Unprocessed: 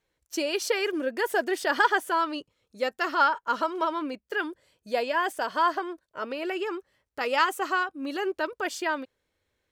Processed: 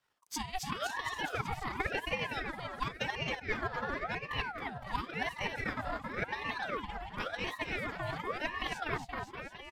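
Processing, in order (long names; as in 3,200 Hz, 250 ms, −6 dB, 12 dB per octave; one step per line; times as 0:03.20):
pitch shifter swept by a sawtooth −2 semitones, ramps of 930 ms
reversed playback
downward compressor 10 to 1, threshold −35 dBFS, peak gain reduction 18.5 dB
reversed playback
transient designer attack +10 dB, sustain −8 dB
on a send: bouncing-ball delay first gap 270 ms, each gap 0.9×, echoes 5
on the sum: ring modulator whose carrier an LFO sweeps 920 Hz, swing 60%, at 0.93 Hz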